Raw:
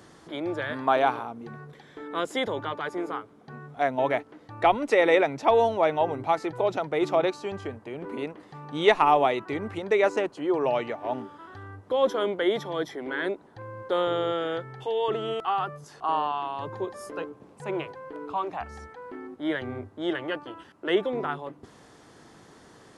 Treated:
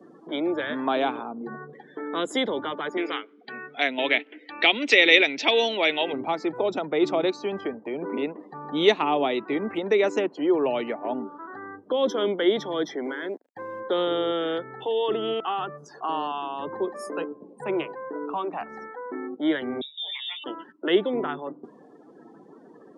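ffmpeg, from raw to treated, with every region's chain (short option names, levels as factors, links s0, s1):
-filter_complex "[0:a]asettb=1/sr,asplit=3[s0][s1][s2];[s0]atrim=end=2.974[s3];[s1]atrim=start=2.97:end=6.13,asetpts=PTS-STARTPTS,afade=t=in:d=0.004:c=qsin,afade=t=out:st=3.156:d=0.004:c=qsin,highpass=270,lowpass=4000,highshelf=f=1600:t=q:w=1.5:g=12.5[s4];[s2]atrim=start=6.126[s5];[s3][s4]acrossfade=d=0.004:c1=hsin:c2=qsin[s6];[s6][s5]acrossfade=d=0.004:c1=qsin:c2=hsin,asettb=1/sr,asplit=3[s7][s8][s9];[s7]atrim=end=13.044[s10];[s8]atrim=start=13.04:end=13.8,asetpts=PTS-STARTPTS,afade=t=in:d=0.004:c=qsin,afade=t=out:st=0.756:d=0.004:c=qsin,acompressor=threshold=0.0251:ratio=6:attack=3.2:release=140:knee=1:detection=peak,aeval=exprs='val(0)*gte(abs(val(0)),0.00473)':c=same[s11];[s9]atrim=start=13.796[s12];[s10][s11]acrossfade=d=0.004:c1=hsin:c2=qsin[s13];[s13][s12]acrossfade=d=0.004:c1=qsin:c2=hsin,asettb=1/sr,asplit=3[s14][s15][s16];[s14]atrim=end=19.814[s17];[s15]atrim=start=19.81:end=20.44,asetpts=PTS-STARTPTS,afade=t=in:d=0.004:c=qsin,afade=t=out:st=0.626:d=0.004:c=qsin,acompressor=threshold=0.01:ratio=4:attack=3.2:release=140:knee=1:detection=peak,asplit=2[s18][s19];[s19]adelay=16,volume=0.562[s20];[s18][s20]amix=inputs=2:normalize=0,atrim=end_sample=27783,lowpass=f=3300:t=q:w=0.5098,lowpass=f=3300:t=q:w=0.6013,lowpass=f=3300:t=q:w=0.9,lowpass=f=3300:t=q:w=2.563,afreqshift=-3900[s21];[s16]atrim=start=20.436[s22];[s17][s21]acrossfade=d=0.004:c1=hsin:c2=qsin[s23];[s23][s22]acrossfade=d=0.004:c1=qsin:c2=hsin,afftdn=nr=28:nf=-48,highpass=f=200:w=0.5412,highpass=f=200:w=1.3066,acrossover=split=370|3000[s24][s25][s26];[s25]acompressor=threshold=0.00794:ratio=2[s27];[s24][s27][s26]amix=inputs=3:normalize=0,volume=2.24"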